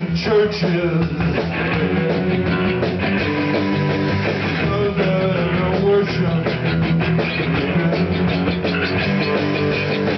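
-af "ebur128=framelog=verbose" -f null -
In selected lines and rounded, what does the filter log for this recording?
Integrated loudness:
  I:         -18.5 LUFS
  Threshold: -28.5 LUFS
Loudness range:
  LRA:         0.8 LU
  Threshold: -38.5 LUFS
  LRA low:   -18.9 LUFS
  LRA high:  -18.1 LUFS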